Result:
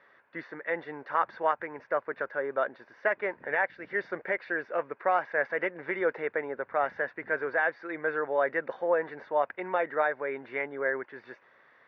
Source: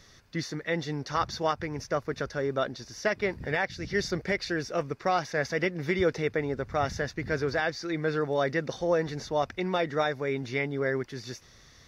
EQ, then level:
loudspeaker in its box 430–2,300 Hz, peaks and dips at 560 Hz +4 dB, 950 Hz +6 dB, 1,600 Hz +6 dB
−1.5 dB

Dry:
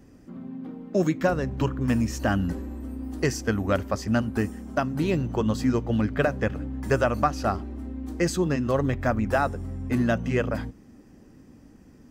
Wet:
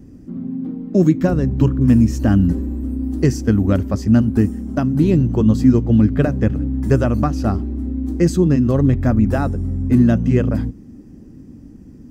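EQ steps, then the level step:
bass and treble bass +14 dB, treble +4 dB
parametric band 310 Hz +8.5 dB 1.4 octaves
−2.5 dB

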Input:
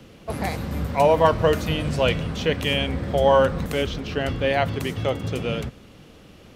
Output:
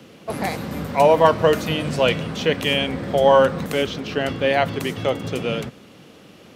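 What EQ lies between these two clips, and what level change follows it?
high-pass filter 150 Hz 12 dB per octave
+3.0 dB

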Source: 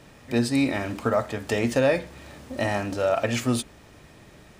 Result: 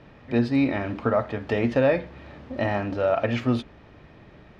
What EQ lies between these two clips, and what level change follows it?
high-frequency loss of the air 280 metres
+1.5 dB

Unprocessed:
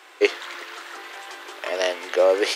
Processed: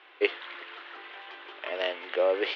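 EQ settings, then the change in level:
low-pass with resonance 3,200 Hz, resonance Q 2.2
high-frequency loss of the air 220 metres
−7.0 dB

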